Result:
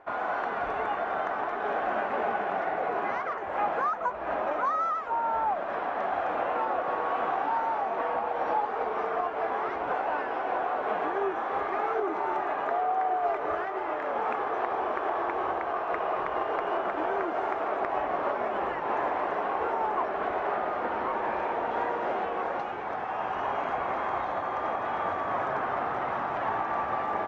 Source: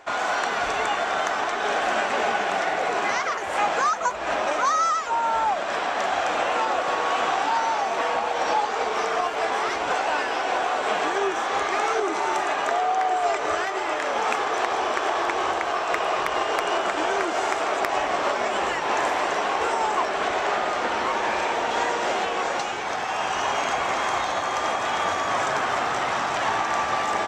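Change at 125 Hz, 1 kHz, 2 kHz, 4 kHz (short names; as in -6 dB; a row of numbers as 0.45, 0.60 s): n/a, -5.0 dB, -9.0 dB, -19.0 dB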